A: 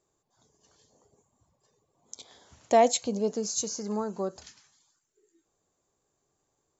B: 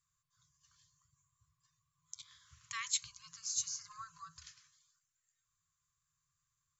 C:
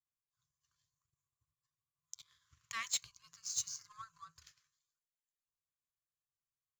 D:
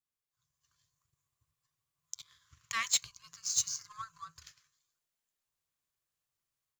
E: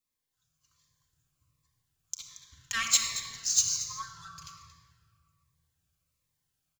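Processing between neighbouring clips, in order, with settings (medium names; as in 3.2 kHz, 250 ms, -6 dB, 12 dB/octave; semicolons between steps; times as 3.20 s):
FFT band-reject 170–1000 Hz; trim -5 dB
treble shelf 4.2 kHz -4.5 dB; power-law waveshaper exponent 1.4; overload inside the chain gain 33.5 dB; trim +7 dB
level rider gain up to 7 dB
delay 228 ms -14 dB; simulated room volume 3800 m³, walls mixed, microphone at 2.1 m; Shepard-style phaser falling 1.3 Hz; trim +4.5 dB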